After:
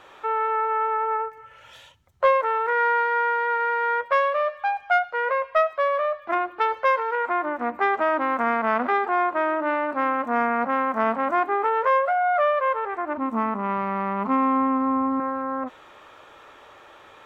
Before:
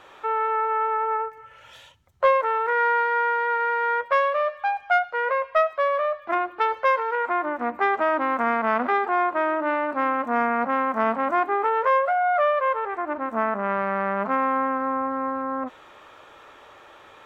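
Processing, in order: 13.17–15.2 thirty-one-band EQ 100 Hz +10 dB, 250 Hz +10 dB, 630 Hz -9 dB, 1000 Hz +4 dB, 1600 Hz -11 dB

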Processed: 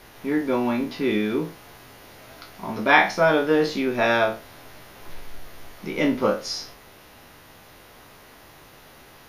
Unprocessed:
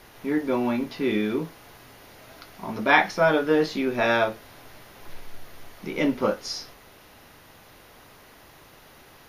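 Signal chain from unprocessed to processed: spectral trails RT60 0.33 s; gain +1 dB

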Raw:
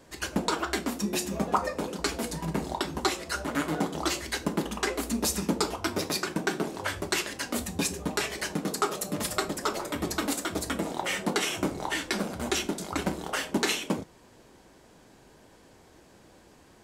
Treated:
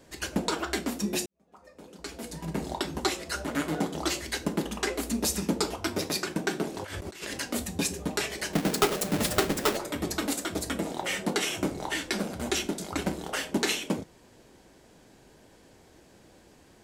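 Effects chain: 8.53–9.77 half-waves squared off; bell 1100 Hz -4 dB 0.8 oct; 1.26–2.68 fade in quadratic; 6.77–7.4 negative-ratio compressor -39 dBFS, ratio -1

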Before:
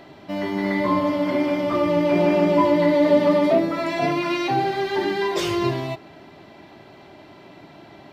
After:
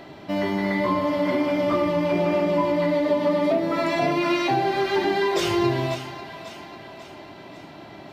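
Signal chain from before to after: compressor, threshold -21 dBFS, peak gain reduction 9.5 dB; split-band echo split 510 Hz, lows 92 ms, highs 0.543 s, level -11 dB; gain +2.5 dB

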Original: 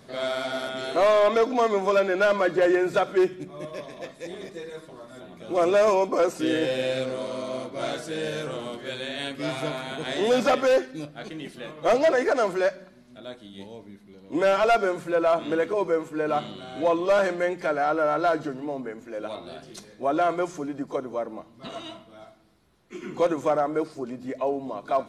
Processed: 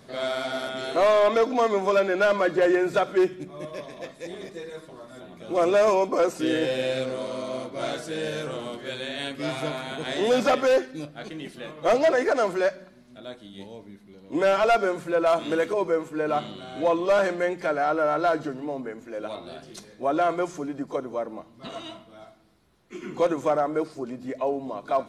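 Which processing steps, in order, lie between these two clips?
15.26–15.74 high shelf 3900 Hz +8.5 dB

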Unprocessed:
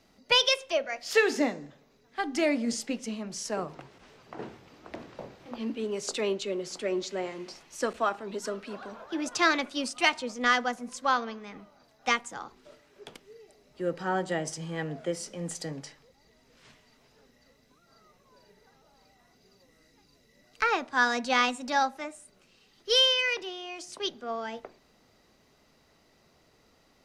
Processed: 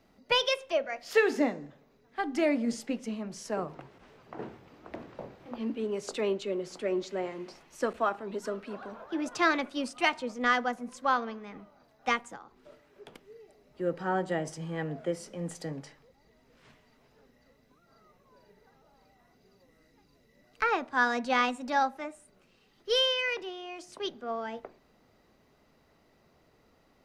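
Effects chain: bell 6300 Hz -8.5 dB 2.3 oct; 12.35–13.14 compressor 6:1, threshold -45 dBFS, peak gain reduction 9.5 dB

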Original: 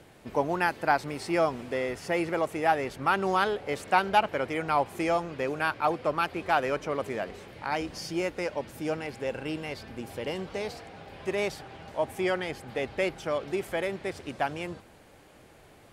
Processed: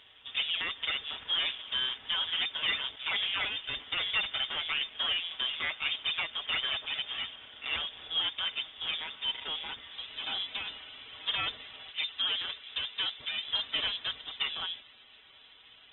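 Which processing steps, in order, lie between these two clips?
minimum comb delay 5.7 ms; limiter -21 dBFS, peak gain reduction 10.5 dB; 11.91–13.48 air absorption 300 m; inverted band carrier 3600 Hz; Opus 16 kbps 48000 Hz

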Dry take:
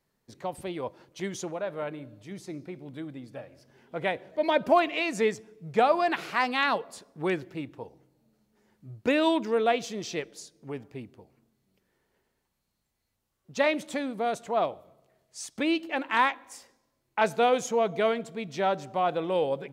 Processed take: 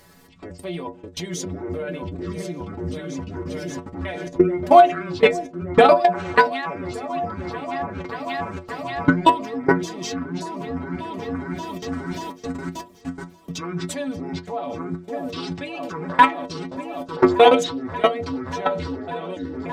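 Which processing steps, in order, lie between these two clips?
trilling pitch shifter -9.5 st, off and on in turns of 0.289 s; upward compressor, threshold -41 dBFS; repeats that get brighter 0.584 s, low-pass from 400 Hz, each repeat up 2 oct, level -6 dB; level quantiser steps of 22 dB; metallic resonator 85 Hz, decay 0.28 s, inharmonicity 0.008; de-hum 119 Hz, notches 6; maximiser +24.5 dB; gain -1 dB; Opus 256 kbps 48000 Hz

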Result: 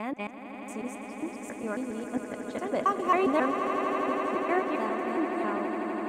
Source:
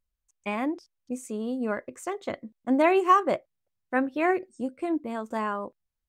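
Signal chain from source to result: slices in reverse order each 0.136 s, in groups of 5; swelling echo 83 ms, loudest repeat 8, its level -11 dB; gain -4.5 dB

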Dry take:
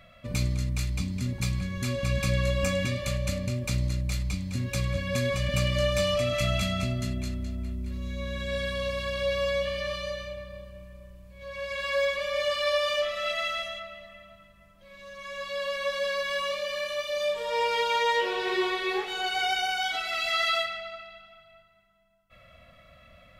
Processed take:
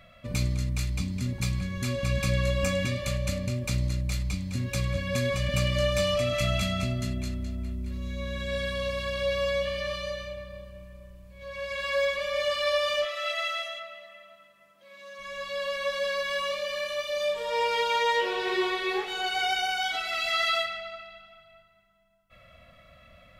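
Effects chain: 13.04–15.18 HPF 610 Hz -> 270 Hz 12 dB/oct

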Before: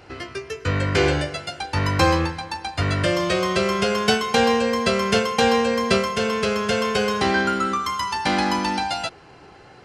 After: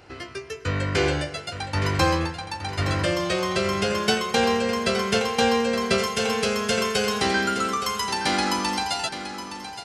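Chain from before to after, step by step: high shelf 4800 Hz +3.5 dB, from 5.98 s +11.5 dB; feedback echo 0.868 s, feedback 34%, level -10.5 dB; gain -3.5 dB

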